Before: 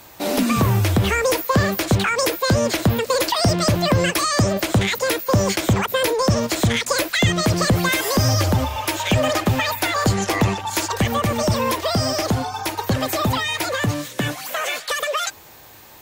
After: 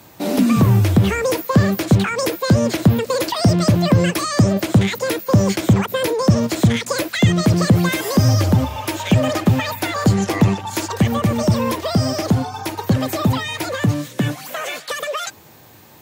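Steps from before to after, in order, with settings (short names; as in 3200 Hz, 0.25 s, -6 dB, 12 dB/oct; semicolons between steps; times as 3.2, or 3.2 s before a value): HPF 79 Hz; bell 160 Hz +10 dB 2.5 oct; gain -3 dB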